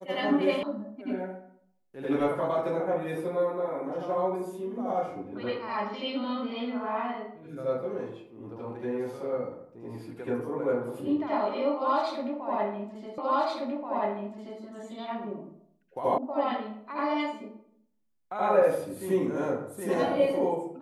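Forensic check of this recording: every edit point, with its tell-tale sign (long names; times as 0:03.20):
0:00.63: cut off before it has died away
0:13.18: the same again, the last 1.43 s
0:16.18: cut off before it has died away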